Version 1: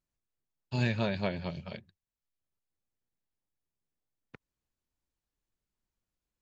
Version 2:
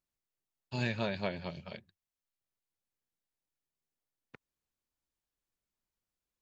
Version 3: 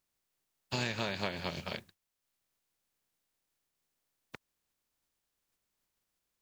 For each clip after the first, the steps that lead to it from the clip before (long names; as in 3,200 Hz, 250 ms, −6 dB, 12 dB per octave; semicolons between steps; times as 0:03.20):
low-shelf EQ 220 Hz −6 dB; level −1.5 dB
compressing power law on the bin magnitudes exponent 0.62; downward compressor 4 to 1, threshold −38 dBFS, peak gain reduction 9.5 dB; level +6.5 dB